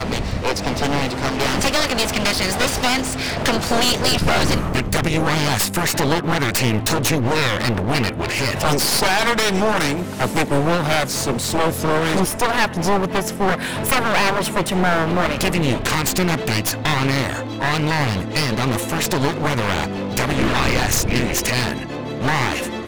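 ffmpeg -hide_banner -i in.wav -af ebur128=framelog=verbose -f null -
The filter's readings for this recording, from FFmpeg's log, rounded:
Integrated loudness:
  I:         -19.2 LUFS
  Threshold: -29.2 LUFS
Loudness range:
  LRA:         1.7 LU
  Threshold: -39.0 LUFS
  LRA low:   -20.0 LUFS
  LRA high:  -18.3 LUFS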